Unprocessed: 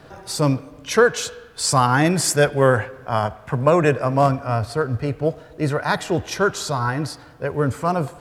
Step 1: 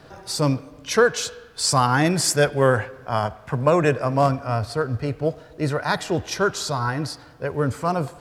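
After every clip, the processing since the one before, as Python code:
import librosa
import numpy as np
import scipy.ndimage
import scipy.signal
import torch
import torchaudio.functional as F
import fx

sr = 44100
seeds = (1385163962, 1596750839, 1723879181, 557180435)

y = fx.peak_eq(x, sr, hz=4900.0, db=3.5, octaves=0.76)
y = y * 10.0 ** (-2.0 / 20.0)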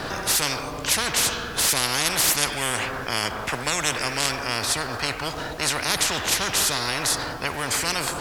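y = fx.spectral_comp(x, sr, ratio=10.0)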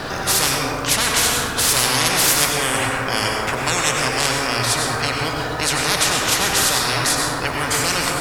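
y = fx.rev_plate(x, sr, seeds[0], rt60_s=1.5, hf_ratio=0.4, predelay_ms=80, drr_db=0.0)
y = y * 10.0 ** (3.0 / 20.0)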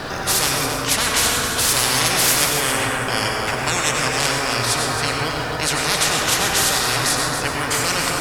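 y = x + 10.0 ** (-8.0 / 20.0) * np.pad(x, (int(272 * sr / 1000.0), 0))[:len(x)]
y = y * 10.0 ** (-1.0 / 20.0)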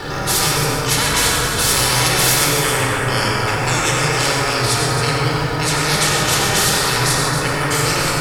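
y = fx.room_shoebox(x, sr, seeds[1], volume_m3=2200.0, walls='furnished', distance_m=4.2)
y = y * 10.0 ** (-1.5 / 20.0)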